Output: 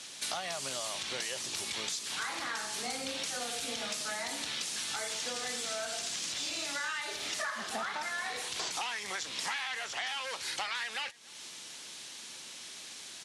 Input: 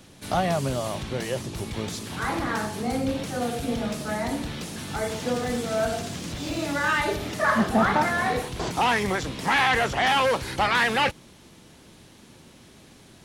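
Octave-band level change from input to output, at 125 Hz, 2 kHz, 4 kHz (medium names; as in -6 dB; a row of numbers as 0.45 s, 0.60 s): -26.0 dB, -10.5 dB, -2.5 dB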